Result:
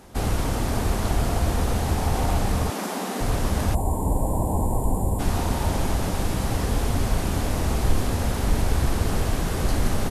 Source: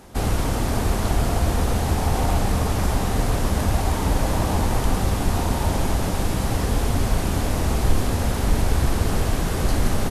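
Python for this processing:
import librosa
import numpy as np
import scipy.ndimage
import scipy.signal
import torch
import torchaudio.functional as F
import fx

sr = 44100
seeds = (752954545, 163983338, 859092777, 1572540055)

y = fx.steep_highpass(x, sr, hz=190.0, slope=48, at=(2.7, 3.21))
y = fx.spec_box(y, sr, start_s=3.75, length_s=1.44, low_hz=1100.0, high_hz=6900.0, gain_db=-23)
y = y * librosa.db_to_amplitude(-2.0)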